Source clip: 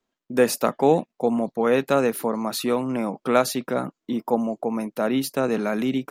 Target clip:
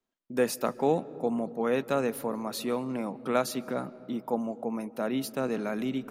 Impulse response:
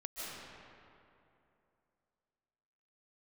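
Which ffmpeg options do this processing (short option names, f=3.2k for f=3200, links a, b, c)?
-filter_complex "[0:a]asplit=2[a][b];[1:a]atrim=start_sample=2205,lowshelf=f=410:g=12[c];[b][c]afir=irnorm=-1:irlink=0,volume=-21.5dB[d];[a][d]amix=inputs=2:normalize=0,volume=-8dB"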